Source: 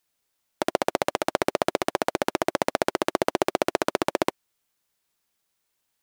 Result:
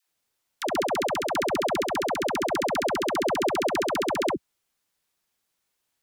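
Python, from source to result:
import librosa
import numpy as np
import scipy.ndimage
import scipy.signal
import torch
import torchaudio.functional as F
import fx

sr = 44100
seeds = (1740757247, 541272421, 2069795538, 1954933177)

y = fx.high_shelf(x, sr, hz=12000.0, db=-3.0)
y = fx.dispersion(y, sr, late='lows', ms=86.0, hz=570.0)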